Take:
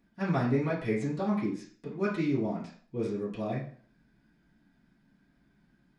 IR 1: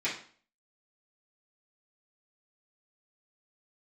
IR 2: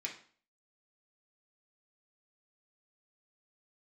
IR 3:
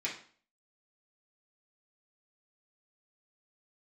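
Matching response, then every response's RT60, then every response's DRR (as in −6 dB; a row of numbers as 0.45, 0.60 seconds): 1; 0.45, 0.45, 0.45 seconds; −10.5, −2.0, −6.5 decibels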